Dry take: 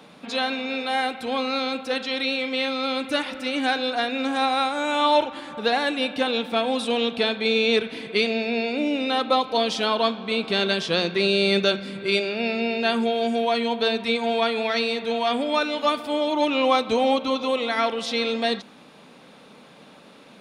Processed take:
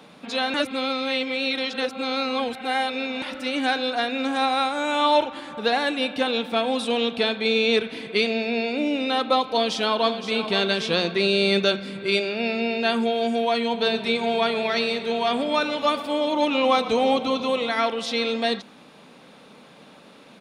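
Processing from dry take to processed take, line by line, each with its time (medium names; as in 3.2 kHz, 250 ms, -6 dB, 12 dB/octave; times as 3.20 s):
0.54–3.22 s: reverse
9.45–10.49 s: echo throw 520 ms, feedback 30%, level -10 dB
13.62–17.70 s: frequency-shifting echo 117 ms, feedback 49%, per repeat -32 Hz, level -15 dB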